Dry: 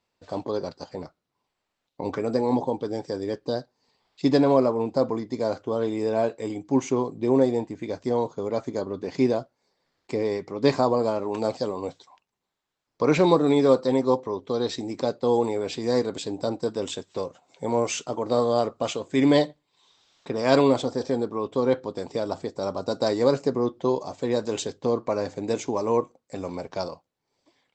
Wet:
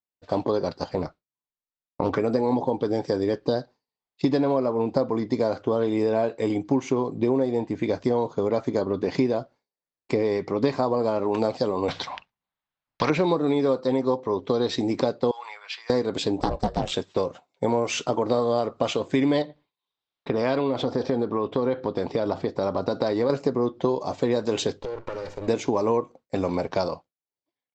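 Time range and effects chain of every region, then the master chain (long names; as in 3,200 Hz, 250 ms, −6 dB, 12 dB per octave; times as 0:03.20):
0:00.76–0:02.15: low-shelf EQ 84 Hz +6.5 dB + highs frequency-modulated by the lows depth 0.23 ms
0:11.88–0:13.10: low-pass filter 4,000 Hz + parametric band 380 Hz −10 dB 0.93 octaves + every bin compressed towards the loudest bin 2 to 1
0:15.31–0:15.90: high-pass filter 1,200 Hz 24 dB per octave + high-frequency loss of the air 150 metres + notch filter 3,700 Hz
0:16.40–0:16.94: ring modulation 260 Hz + highs frequency-modulated by the lows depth 0.24 ms
0:19.42–0:23.30: low-pass filter 4,700 Hz + downward compressor 2 to 1, threshold −29 dBFS
0:24.80–0:25.48: lower of the sound and its delayed copy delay 2.1 ms + downward compressor 20 to 1, threshold −36 dBFS
whole clip: downward expander −42 dBFS; low-pass filter 5,000 Hz 12 dB per octave; downward compressor 6 to 1, threshold −28 dBFS; level +8.5 dB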